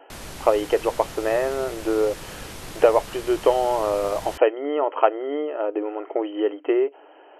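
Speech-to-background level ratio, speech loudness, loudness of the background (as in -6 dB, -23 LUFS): 14.5 dB, -23.0 LUFS, -37.5 LUFS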